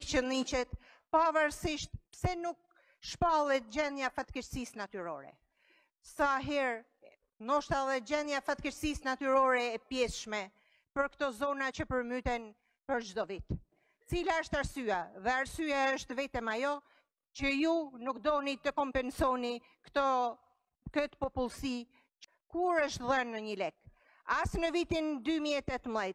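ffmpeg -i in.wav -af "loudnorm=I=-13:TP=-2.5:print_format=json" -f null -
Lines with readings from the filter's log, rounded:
"input_i" : "-34.3",
"input_tp" : "-15.6",
"input_lra" : "3.1",
"input_thresh" : "-44.9",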